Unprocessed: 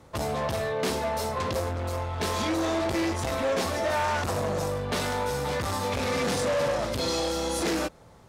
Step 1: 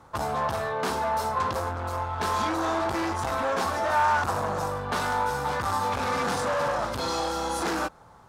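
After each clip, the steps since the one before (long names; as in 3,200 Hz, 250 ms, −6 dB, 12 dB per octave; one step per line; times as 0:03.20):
flat-topped bell 1,100 Hz +9 dB 1.3 octaves
level −3 dB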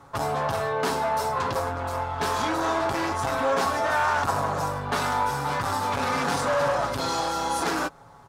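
comb filter 7.2 ms, depth 50%
level +1.5 dB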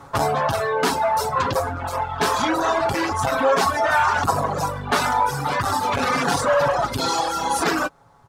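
reverb reduction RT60 1.7 s
level +7.5 dB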